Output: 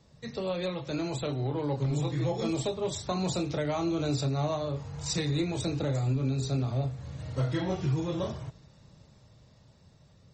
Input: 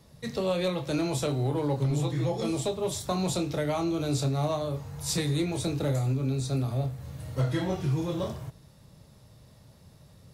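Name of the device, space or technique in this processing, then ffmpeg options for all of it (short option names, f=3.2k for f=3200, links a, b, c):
low-bitrate web radio: -filter_complex "[0:a]asplit=3[a][b][c];[a]afade=t=out:st=5.28:d=0.02[d];[b]bandreject=f=204.4:t=h:w=4,bandreject=f=408.8:t=h:w=4,bandreject=f=613.2:t=h:w=4,afade=t=in:st=5.28:d=0.02,afade=t=out:st=6.62:d=0.02[e];[c]afade=t=in:st=6.62:d=0.02[f];[d][e][f]amix=inputs=3:normalize=0,dynaudnorm=f=380:g=11:m=5dB,alimiter=limit=-16dB:level=0:latency=1:release=468,volume=-4dB" -ar 48000 -c:a libmp3lame -b:a 32k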